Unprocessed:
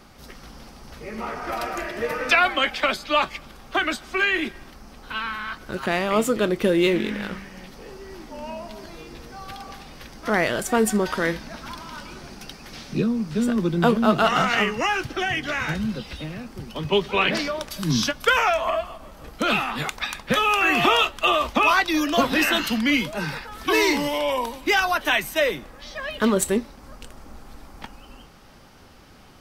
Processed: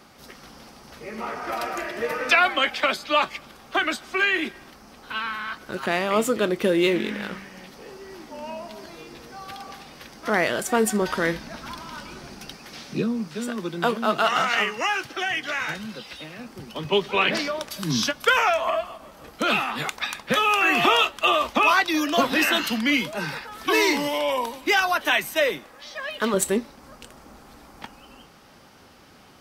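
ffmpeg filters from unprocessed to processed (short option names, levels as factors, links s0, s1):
-af "asetnsamples=n=441:p=0,asendcmd='11.02 highpass f 60;12.58 highpass f 210;13.28 highpass f 620;16.39 highpass f 200;25.58 highpass f 460;26.34 highpass f 150',highpass=f=190:p=1"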